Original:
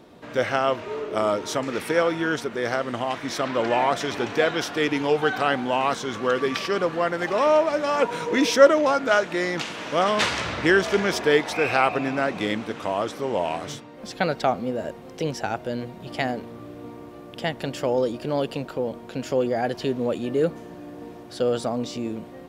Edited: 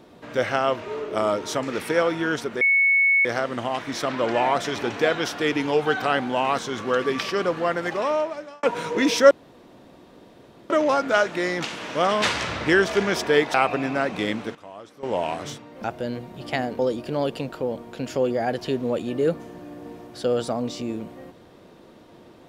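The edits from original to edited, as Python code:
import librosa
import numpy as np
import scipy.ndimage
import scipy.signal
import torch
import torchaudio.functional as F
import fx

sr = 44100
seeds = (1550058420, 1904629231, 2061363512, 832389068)

y = fx.edit(x, sr, fx.insert_tone(at_s=2.61, length_s=0.64, hz=2210.0, db=-15.0),
    fx.fade_out_span(start_s=7.15, length_s=0.84),
    fx.insert_room_tone(at_s=8.67, length_s=1.39),
    fx.cut(start_s=11.51, length_s=0.25),
    fx.fade_down_up(start_s=12.57, length_s=0.88, db=-15.5, fade_s=0.2, curve='log'),
    fx.cut(start_s=14.06, length_s=1.44),
    fx.cut(start_s=16.45, length_s=1.5), tone=tone)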